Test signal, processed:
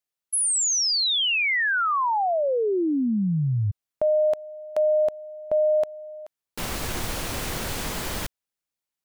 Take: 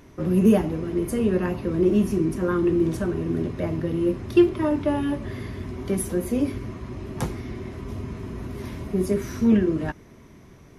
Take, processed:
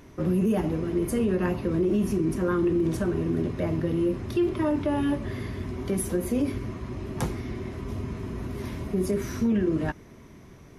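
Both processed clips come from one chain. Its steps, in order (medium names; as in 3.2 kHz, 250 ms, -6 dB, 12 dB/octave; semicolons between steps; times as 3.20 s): peak limiter -17 dBFS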